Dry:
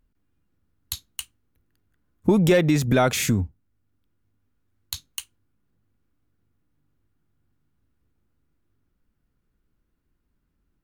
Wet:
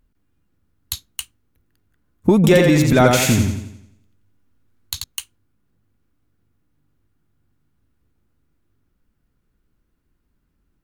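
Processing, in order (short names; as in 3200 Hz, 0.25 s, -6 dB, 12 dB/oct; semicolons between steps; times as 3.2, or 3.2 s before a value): 2.35–5.04 warbling echo 87 ms, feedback 46%, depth 53 cents, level -3.5 dB; gain +4.5 dB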